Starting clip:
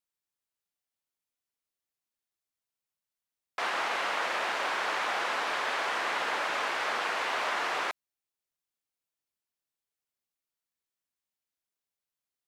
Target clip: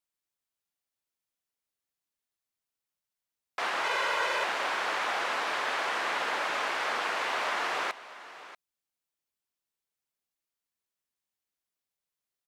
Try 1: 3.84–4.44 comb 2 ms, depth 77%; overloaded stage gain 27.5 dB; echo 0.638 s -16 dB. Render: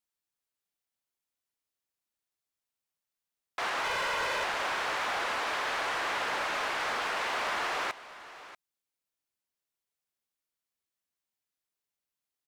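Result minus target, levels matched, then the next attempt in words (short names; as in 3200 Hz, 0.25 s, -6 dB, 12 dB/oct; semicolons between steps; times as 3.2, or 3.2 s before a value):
overloaded stage: distortion +27 dB
3.84–4.44 comb 2 ms, depth 77%; overloaded stage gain 18.5 dB; echo 0.638 s -16 dB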